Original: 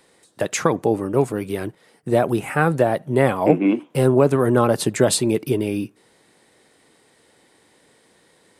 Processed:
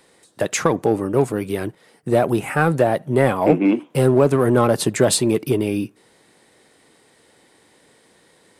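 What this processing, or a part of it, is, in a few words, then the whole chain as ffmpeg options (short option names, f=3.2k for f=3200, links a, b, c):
parallel distortion: -filter_complex "[0:a]asplit=2[a][b];[b]asoftclip=type=hard:threshold=-15dB,volume=-6.5dB[c];[a][c]amix=inputs=2:normalize=0,volume=-1.5dB"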